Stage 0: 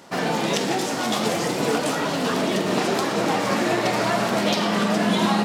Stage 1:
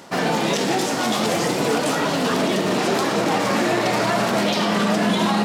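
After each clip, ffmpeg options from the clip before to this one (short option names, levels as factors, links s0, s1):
-af "alimiter=limit=0.2:level=0:latency=1:release=19,areverse,acompressor=mode=upward:threshold=0.0562:ratio=2.5,areverse,volume=1.41"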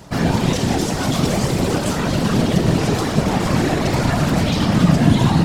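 -af "afftfilt=real='hypot(re,im)*cos(2*PI*random(0))':imag='hypot(re,im)*sin(2*PI*random(1))':win_size=512:overlap=0.75,bass=f=250:g=14,treble=f=4000:g=3,volume=1.5"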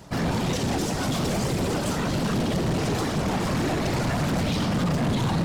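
-af "asoftclip=type=hard:threshold=0.158,volume=0.562"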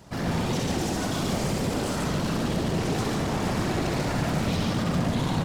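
-af "aecho=1:1:64.14|142.9:0.631|0.794,volume=0.596"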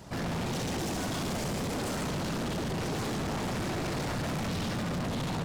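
-af "asoftclip=type=tanh:threshold=0.0237,volume=1.26"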